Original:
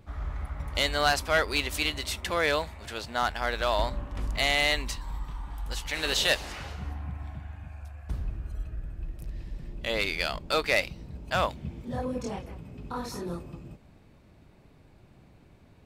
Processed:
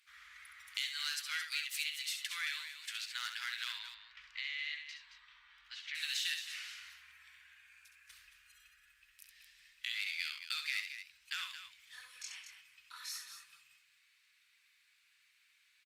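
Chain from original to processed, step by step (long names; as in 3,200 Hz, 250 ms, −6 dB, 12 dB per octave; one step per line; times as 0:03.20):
inverse Chebyshev high-pass filter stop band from 700 Hz, stop band 50 dB
downward compressor 3 to 1, threshold −38 dBFS, peak gain reduction 12.5 dB
0:03.72–0:05.95: high-frequency loss of the air 230 metres
loudspeakers that aren't time-aligned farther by 23 metres −7 dB, 76 metres −10 dB
Opus 48 kbit/s 48,000 Hz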